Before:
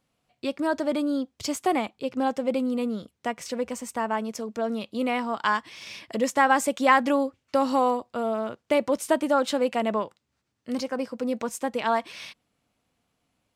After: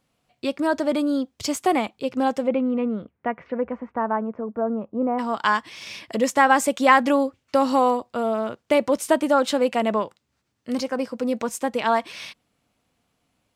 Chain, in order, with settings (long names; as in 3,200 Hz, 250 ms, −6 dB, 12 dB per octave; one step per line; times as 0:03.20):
0:02.46–0:05.18: low-pass filter 2,700 Hz → 1,100 Hz 24 dB per octave
level +3.5 dB